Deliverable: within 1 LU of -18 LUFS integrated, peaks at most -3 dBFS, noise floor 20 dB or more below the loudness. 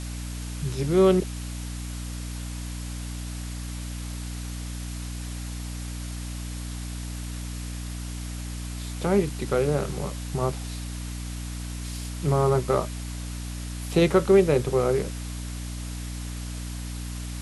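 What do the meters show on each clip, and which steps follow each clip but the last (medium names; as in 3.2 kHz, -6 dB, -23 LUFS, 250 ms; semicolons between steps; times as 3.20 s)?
hum 60 Hz; highest harmonic 300 Hz; hum level -31 dBFS; noise floor -34 dBFS; noise floor target -49 dBFS; loudness -28.5 LUFS; peak level -7.0 dBFS; loudness target -18.0 LUFS
-> de-hum 60 Hz, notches 5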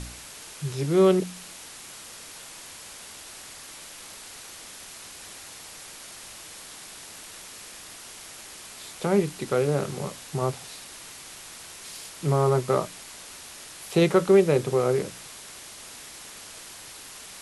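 hum not found; noise floor -44 dBFS; noise floor target -45 dBFS
-> noise reduction 6 dB, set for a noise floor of -44 dBFS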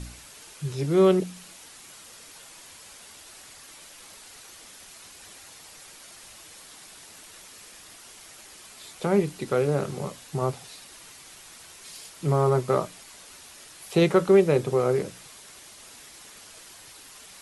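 noise floor -48 dBFS; loudness -24.5 LUFS; peak level -7.5 dBFS; loudness target -18.0 LUFS
-> trim +6.5 dB; peak limiter -3 dBFS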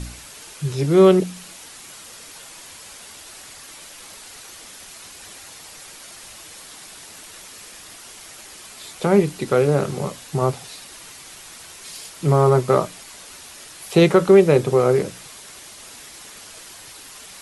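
loudness -18.0 LUFS; peak level -3.0 dBFS; noise floor -42 dBFS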